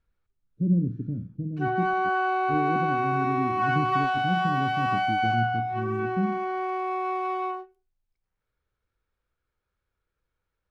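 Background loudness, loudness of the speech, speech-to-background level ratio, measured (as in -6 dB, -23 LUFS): -26.5 LUFS, -30.5 LUFS, -4.0 dB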